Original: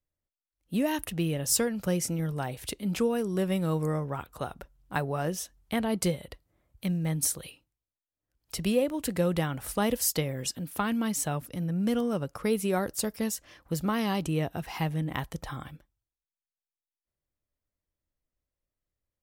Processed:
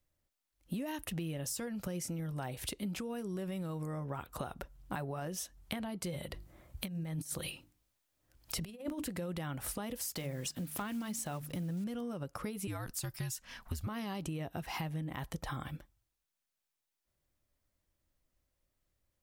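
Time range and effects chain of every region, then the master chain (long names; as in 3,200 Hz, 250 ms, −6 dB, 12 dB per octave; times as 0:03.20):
0:06.12–0:09.06: mains-hum notches 50/100/150/200/250/300/350 Hz + compressor whose output falls as the input rises −35 dBFS, ratio −0.5
0:09.96–0:11.86: one scale factor per block 5 bits + hum removal 75.4 Hz, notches 3
0:12.67–0:13.87: parametric band 500 Hz −13.5 dB 0.78 octaves + frequency shifter −81 Hz
whole clip: brickwall limiter −23 dBFS; downward compressor 10 to 1, threshold −43 dBFS; notch filter 450 Hz, Q 12; level +7 dB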